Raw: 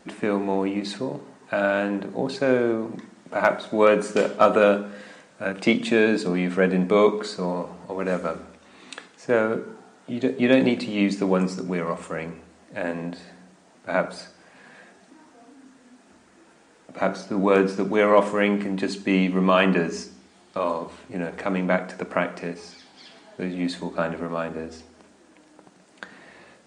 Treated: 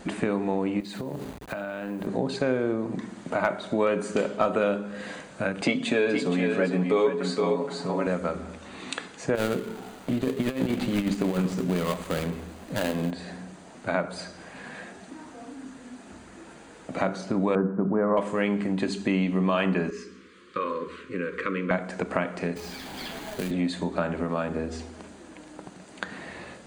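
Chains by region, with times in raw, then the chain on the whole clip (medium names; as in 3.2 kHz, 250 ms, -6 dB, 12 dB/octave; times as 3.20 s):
0.80–2.07 s: send-on-delta sampling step -44.5 dBFS + high-pass 57 Hz + compression 10:1, threshold -36 dBFS
5.61–8.07 s: high-pass 160 Hz + comb 7.2 ms, depth 63% + delay 469 ms -7 dB
9.35–13.11 s: dead-time distortion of 0.2 ms + compressor with a negative ratio -22 dBFS, ratio -0.5
17.55–18.17 s: steep low-pass 1.5 kHz + peaking EQ 180 Hz +5.5 dB 0.63 oct
19.90–21.71 s: Chebyshev band-stop 510–1100 Hz, order 3 + tone controls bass -15 dB, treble -14 dB
22.56–23.51 s: median filter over 5 samples + companded quantiser 4-bit + three bands compressed up and down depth 70%
whole clip: bass shelf 110 Hz +11.5 dB; band-stop 5.4 kHz, Q 8.2; compression 2.5:1, threshold -35 dBFS; trim +7 dB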